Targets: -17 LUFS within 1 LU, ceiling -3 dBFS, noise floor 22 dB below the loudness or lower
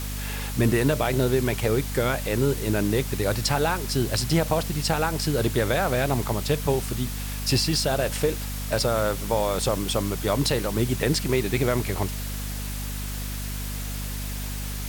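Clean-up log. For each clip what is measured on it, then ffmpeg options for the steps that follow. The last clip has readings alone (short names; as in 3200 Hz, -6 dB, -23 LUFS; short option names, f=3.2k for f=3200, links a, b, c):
hum 50 Hz; harmonics up to 250 Hz; hum level -29 dBFS; noise floor -31 dBFS; noise floor target -47 dBFS; loudness -25.0 LUFS; peak -8.5 dBFS; loudness target -17.0 LUFS
-> -af "bandreject=f=50:t=h:w=6,bandreject=f=100:t=h:w=6,bandreject=f=150:t=h:w=6,bandreject=f=200:t=h:w=6,bandreject=f=250:t=h:w=6"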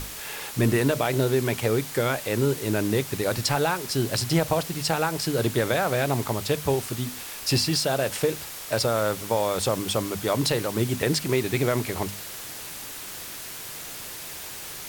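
hum none; noise floor -38 dBFS; noise floor target -48 dBFS
-> -af "afftdn=nr=10:nf=-38"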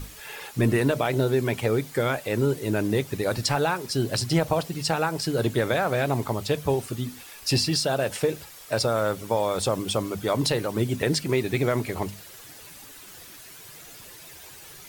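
noise floor -45 dBFS; noise floor target -48 dBFS
-> -af "afftdn=nr=6:nf=-45"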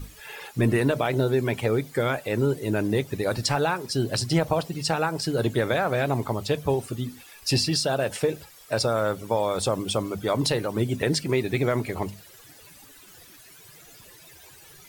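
noise floor -50 dBFS; loudness -25.5 LUFS; peak -9.5 dBFS; loudness target -17.0 LUFS
-> -af "volume=8.5dB,alimiter=limit=-3dB:level=0:latency=1"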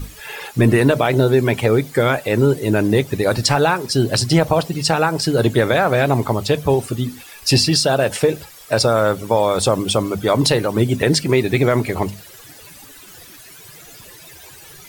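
loudness -17.0 LUFS; peak -3.0 dBFS; noise floor -41 dBFS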